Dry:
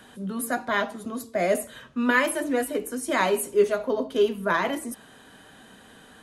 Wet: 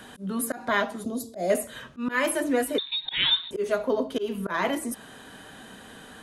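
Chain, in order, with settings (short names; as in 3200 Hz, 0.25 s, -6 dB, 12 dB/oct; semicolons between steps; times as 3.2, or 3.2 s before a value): auto swell 0.171 s; 2.78–3.51 inverted band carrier 4000 Hz; in parallel at -1 dB: compressor, threshold -35 dBFS, peak gain reduction 15.5 dB; 1.04–1.5 on the sum: band shelf 1700 Hz -14 dB; gain -1 dB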